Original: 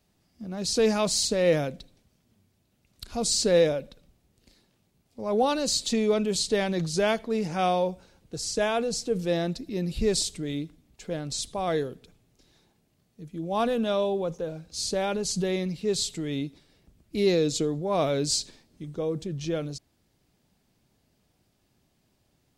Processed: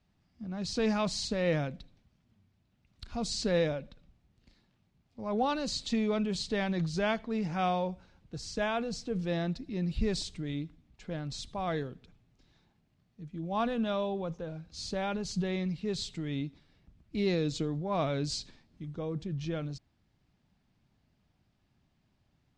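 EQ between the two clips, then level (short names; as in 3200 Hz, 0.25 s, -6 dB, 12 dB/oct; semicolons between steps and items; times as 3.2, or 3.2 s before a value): LPF 5700 Hz 12 dB/oct; bell 450 Hz -9 dB 1.4 oct; high shelf 2900 Hz -9.5 dB; 0.0 dB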